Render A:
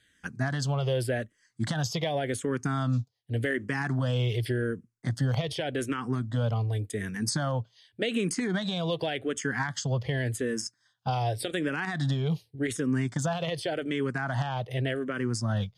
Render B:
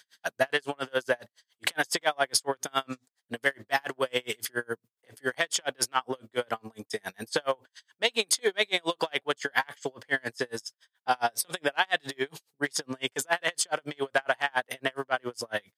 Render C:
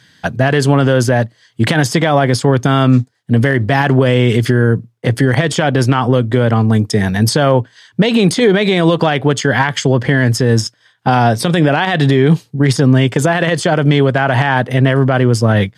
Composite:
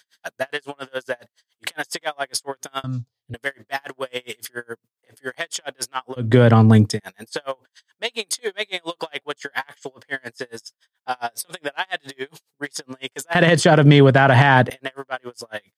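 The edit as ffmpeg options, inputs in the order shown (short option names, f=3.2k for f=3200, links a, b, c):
-filter_complex "[2:a]asplit=2[a][b];[1:a]asplit=4[c][d][e][f];[c]atrim=end=2.842[g];[0:a]atrim=start=2.838:end=3.342[h];[d]atrim=start=3.338:end=6.32[i];[a]atrim=start=6.16:end=7[j];[e]atrim=start=6.84:end=13.352[k];[b]atrim=start=13.348:end=14.702[l];[f]atrim=start=14.698[m];[g][h]acrossfade=d=0.004:c1=hsin:c2=hsin[n];[n][i]acrossfade=d=0.004:c1=hsin:c2=hsin[o];[o][j]acrossfade=d=0.16:c1=tri:c2=tri[p];[p][k]acrossfade=d=0.16:c1=tri:c2=tri[q];[q][l]acrossfade=d=0.004:c1=hsin:c2=hsin[r];[r][m]acrossfade=d=0.004:c1=hsin:c2=hsin"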